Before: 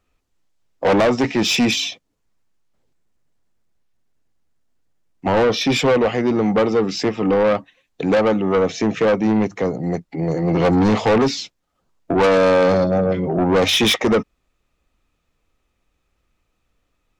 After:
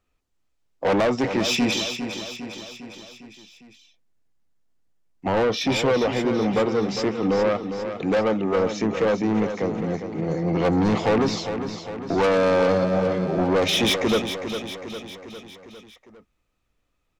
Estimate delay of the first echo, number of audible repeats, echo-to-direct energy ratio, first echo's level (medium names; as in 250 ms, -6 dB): 404 ms, 5, -7.5 dB, -9.0 dB